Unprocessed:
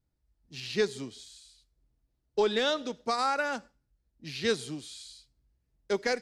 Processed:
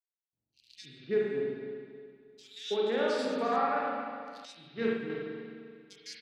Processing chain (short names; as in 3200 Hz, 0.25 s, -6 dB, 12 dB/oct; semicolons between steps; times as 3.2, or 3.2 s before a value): Wiener smoothing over 25 samples; HPF 150 Hz 12 dB/oct; 2.78–3.25 flutter echo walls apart 9.4 m, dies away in 1.2 s; rotary speaker horn 0.6 Hz; bands offset in time highs, lows 0.33 s, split 3000 Hz; spring tank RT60 2.1 s, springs 35/44 ms, chirp 40 ms, DRR -4.5 dB; 4.45–5.1 upward expander 1.5:1, over -39 dBFS; gain -4 dB